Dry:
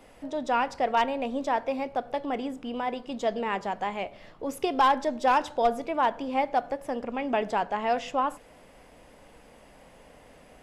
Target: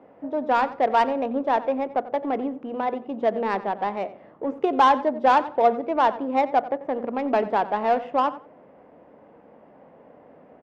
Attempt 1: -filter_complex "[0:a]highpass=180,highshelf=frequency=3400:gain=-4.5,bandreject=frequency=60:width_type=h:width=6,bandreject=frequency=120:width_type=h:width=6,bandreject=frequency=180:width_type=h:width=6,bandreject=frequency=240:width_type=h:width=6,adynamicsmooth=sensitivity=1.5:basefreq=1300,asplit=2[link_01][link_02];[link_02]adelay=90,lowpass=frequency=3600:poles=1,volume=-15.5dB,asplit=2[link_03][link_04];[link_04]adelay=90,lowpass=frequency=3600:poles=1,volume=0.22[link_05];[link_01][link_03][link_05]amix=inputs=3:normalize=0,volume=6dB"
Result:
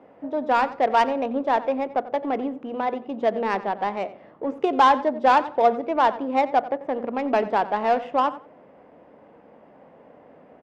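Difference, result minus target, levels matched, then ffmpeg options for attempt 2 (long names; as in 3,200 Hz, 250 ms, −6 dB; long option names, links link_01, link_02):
8,000 Hz band +2.5 dB
-filter_complex "[0:a]highpass=180,highshelf=frequency=3400:gain=-12.5,bandreject=frequency=60:width_type=h:width=6,bandreject=frequency=120:width_type=h:width=6,bandreject=frequency=180:width_type=h:width=6,bandreject=frequency=240:width_type=h:width=6,adynamicsmooth=sensitivity=1.5:basefreq=1300,asplit=2[link_01][link_02];[link_02]adelay=90,lowpass=frequency=3600:poles=1,volume=-15.5dB,asplit=2[link_03][link_04];[link_04]adelay=90,lowpass=frequency=3600:poles=1,volume=0.22[link_05];[link_01][link_03][link_05]amix=inputs=3:normalize=0,volume=6dB"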